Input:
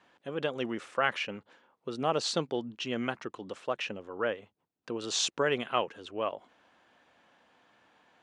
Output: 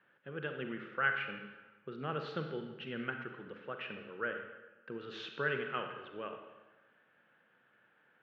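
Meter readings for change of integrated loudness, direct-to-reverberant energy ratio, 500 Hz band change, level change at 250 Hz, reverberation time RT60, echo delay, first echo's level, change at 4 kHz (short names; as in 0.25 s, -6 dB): -6.5 dB, 4.5 dB, -8.5 dB, -7.5 dB, 1.2 s, none, none, -13.0 dB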